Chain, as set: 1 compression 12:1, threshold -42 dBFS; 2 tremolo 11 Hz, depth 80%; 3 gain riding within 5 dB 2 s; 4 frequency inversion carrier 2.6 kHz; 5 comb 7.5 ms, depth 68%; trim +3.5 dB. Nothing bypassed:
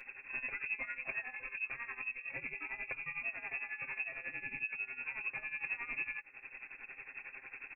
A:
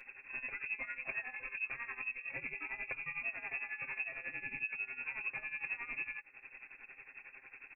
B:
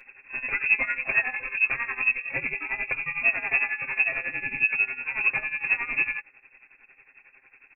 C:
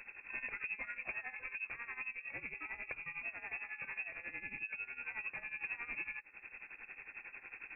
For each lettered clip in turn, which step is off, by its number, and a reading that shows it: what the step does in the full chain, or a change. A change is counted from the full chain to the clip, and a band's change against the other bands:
3, momentary loudness spread change +3 LU; 1, mean gain reduction 10.0 dB; 5, loudness change -2.5 LU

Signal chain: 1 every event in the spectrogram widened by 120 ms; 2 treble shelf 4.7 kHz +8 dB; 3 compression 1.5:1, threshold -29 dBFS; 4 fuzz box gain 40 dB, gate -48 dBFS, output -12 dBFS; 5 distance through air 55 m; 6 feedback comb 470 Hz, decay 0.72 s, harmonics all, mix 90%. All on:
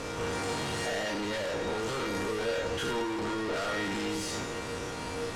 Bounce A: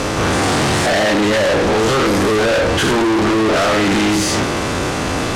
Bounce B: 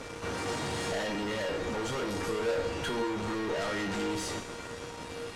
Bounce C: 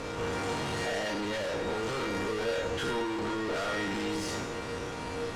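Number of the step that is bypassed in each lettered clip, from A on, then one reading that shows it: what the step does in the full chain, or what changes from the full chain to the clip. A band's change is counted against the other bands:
6, 250 Hz band +2.0 dB; 1, crest factor change +2.0 dB; 2, 8 kHz band -3.0 dB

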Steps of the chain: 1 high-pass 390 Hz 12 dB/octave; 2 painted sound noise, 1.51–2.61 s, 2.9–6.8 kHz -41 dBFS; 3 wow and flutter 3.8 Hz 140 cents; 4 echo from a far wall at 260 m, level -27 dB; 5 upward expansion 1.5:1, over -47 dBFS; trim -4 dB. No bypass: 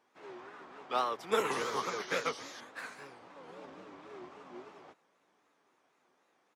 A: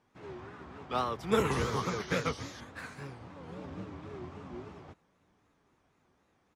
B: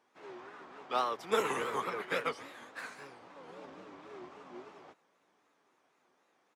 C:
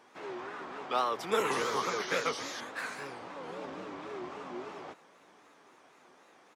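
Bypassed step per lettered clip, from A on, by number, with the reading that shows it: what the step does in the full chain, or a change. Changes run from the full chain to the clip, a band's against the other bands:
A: 1, 125 Hz band +18.0 dB; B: 2, 8 kHz band -4.0 dB; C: 5, crest factor change -2.5 dB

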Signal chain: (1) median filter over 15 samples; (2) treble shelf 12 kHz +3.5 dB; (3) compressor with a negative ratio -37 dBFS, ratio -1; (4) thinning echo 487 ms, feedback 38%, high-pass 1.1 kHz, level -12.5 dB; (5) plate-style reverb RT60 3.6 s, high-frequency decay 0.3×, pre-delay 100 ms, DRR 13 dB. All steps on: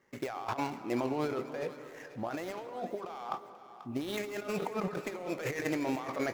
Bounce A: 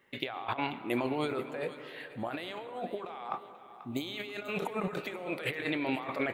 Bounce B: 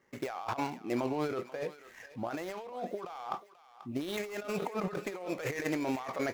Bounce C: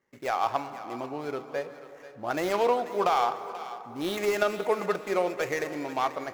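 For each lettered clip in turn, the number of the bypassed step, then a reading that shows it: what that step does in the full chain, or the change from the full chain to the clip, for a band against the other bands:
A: 1, 8 kHz band -7.5 dB; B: 5, echo-to-direct -10.5 dB to -14.0 dB; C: 3, momentary loudness spread change +5 LU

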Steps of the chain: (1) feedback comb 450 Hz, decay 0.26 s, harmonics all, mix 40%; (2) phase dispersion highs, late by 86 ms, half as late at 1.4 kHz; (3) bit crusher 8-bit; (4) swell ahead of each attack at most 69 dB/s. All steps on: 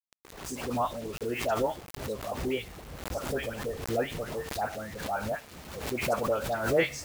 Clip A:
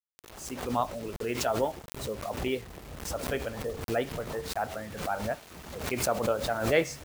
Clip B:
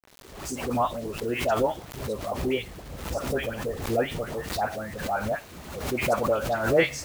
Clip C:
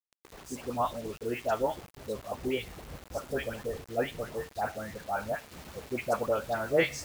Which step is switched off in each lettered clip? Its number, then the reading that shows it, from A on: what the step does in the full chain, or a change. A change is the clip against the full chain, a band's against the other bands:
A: 2, 8 kHz band +3.0 dB; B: 1, loudness change +4.0 LU; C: 4, 8 kHz band -2.5 dB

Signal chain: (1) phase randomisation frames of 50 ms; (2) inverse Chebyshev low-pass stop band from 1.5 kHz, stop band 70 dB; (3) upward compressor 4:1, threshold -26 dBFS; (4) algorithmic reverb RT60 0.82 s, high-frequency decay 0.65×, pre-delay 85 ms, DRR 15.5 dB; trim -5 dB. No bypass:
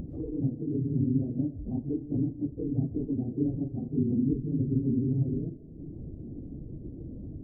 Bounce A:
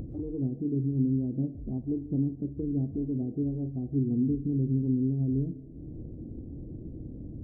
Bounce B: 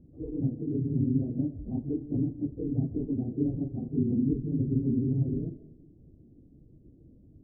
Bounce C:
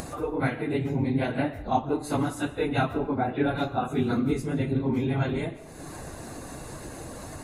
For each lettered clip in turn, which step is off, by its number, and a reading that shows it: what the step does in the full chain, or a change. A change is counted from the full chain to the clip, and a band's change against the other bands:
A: 1, crest factor change -1.5 dB; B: 3, momentary loudness spread change -8 LU; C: 2, crest factor change +2.0 dB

